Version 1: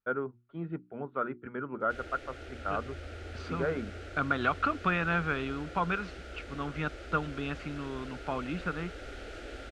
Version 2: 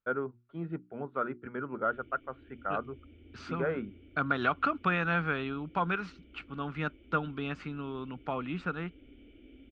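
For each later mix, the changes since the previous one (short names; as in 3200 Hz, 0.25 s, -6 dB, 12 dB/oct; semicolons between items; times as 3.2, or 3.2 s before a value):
background: add vocal tract filter i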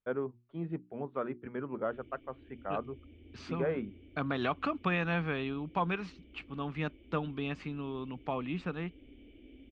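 master: add bell 1400 Hz -14 dB 0.26 oct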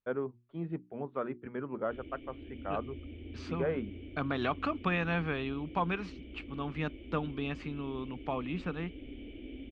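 background +9.5 dB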